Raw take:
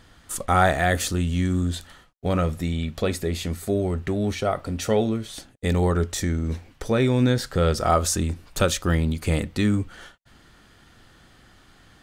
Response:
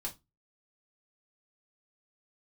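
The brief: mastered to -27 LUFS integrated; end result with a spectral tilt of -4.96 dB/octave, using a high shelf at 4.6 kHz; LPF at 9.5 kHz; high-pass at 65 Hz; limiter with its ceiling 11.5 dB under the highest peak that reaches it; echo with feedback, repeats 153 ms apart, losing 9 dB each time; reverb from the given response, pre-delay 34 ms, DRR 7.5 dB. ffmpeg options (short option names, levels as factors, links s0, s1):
-filter_complex "[0:a]highpass=65,lowpass=9500,highshelf=f=4600:g=4.5,alimiter=limit=0.15:level=0:latency=1,aecho=1:1:153|306|459|612:0.355|0.124|0.0435|0.0152,asplit=2[s0][s1];[1:a]atrim=start_sample=2205,adelay=34[s2];[s1][s2]afir=irnorm=-1:irlink=0,volume=0.447[s3];[s0][s3]amix=inputs=2:normalize=0,volume=0.891"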